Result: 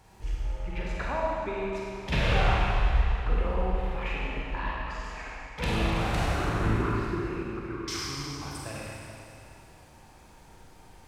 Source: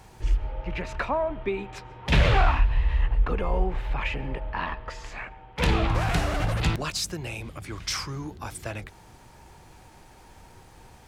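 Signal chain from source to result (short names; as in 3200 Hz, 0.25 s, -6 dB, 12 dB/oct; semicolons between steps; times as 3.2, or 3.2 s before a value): 6.34–7.88 EQ curve 150 Hz 0 dB, 410 Hz +11 dB, 610 Hz -12 dB, 970 Hz +4 dB, 1400 Hz +6 dB, 5500 Hz -26 dB; Schroeder reverb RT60 2.7 s, combs from 32 ms, DRR -4.5 dB; gain -8 dB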